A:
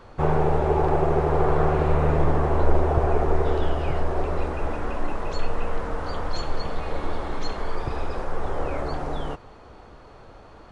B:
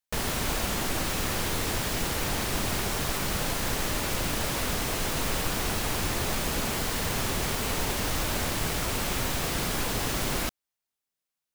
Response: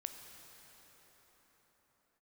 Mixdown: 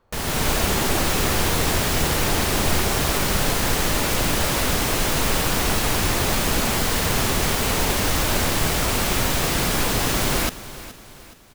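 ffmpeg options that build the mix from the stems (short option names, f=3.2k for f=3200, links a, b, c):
-filter_complex "[0:a]volume=-16.5dB[a];[1:a]volume=1dB,asplit=2[b][c];[c]volume=-16dB,aecho=0:1:421|842|1263|1684|2105|2526:1|0.44|0.194|0.0852|0.0375|0.0165[d];[a][b][d]amix=inputs=3:normalize=0,dynaudnorm=f=120:g=5:m=6.5dB"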